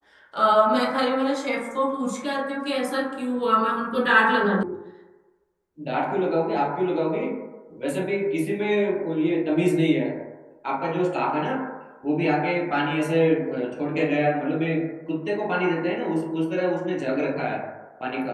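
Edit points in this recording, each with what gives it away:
0:04.63: cut off before it has died away

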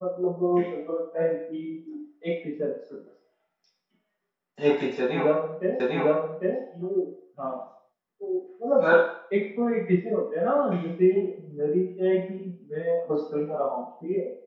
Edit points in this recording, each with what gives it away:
0:05.80: the same again, the last 0.8 s

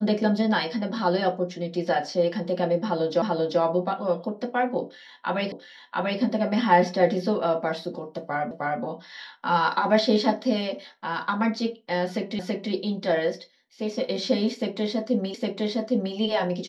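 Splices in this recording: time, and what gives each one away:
0:03.22: the same again, the last 0.39 s
0:05.52: the same again, the last 0.69 s
0:08.51: the same again, the last 0.31 s
0:12.39: the same again, the last 0.33 s
0:15.34: the same again, the last 0.81 s

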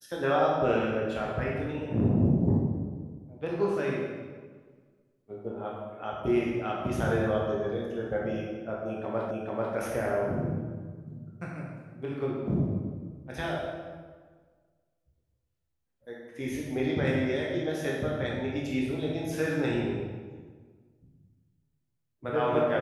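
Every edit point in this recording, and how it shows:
0:09.31: the same again, the last 0.44 s

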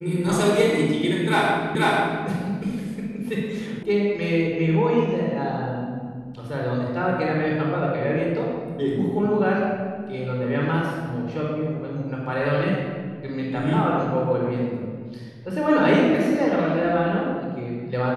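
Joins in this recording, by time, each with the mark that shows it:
0:01.75: the same again, the last 0.49 s
0:03.83: cut off before it has died away

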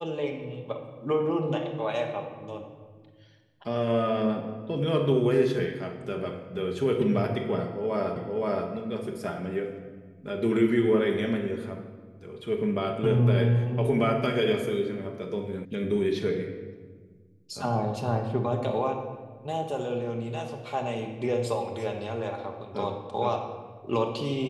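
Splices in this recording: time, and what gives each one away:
0:08.16: the same again, the last 0.52 s
0:15.65: cut off before it has died away

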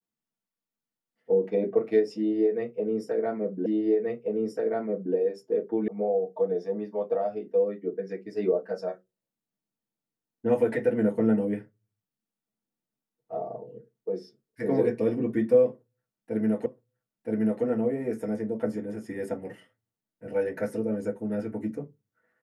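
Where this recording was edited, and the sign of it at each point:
0:03.66: the same again, the last 1.48 s
0:05.88: cut off before it has died away
0:16.66: the same again, the last 0.97 s

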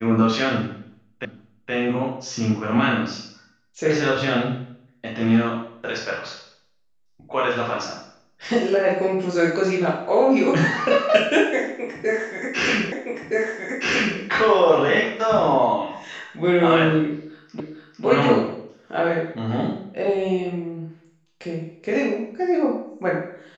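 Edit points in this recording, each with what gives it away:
0:01.25: the same again, the last 0.47 s
0:12.92: the same again, the last 1.27 s
0:17.60: the same again, the last 0.45 s

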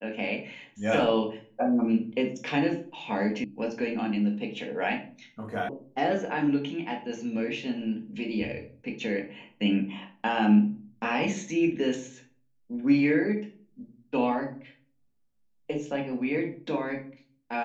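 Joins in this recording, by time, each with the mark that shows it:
0:03.44: cut off before it has died away
0:05.69: cut off before it has died away

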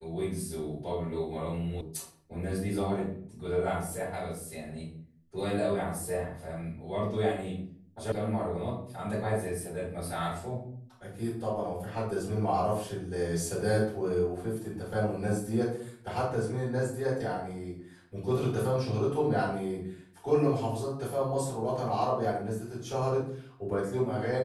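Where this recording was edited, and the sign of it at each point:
0:01.81: cut off before it has died away
0:08.12: cut off before it has died away

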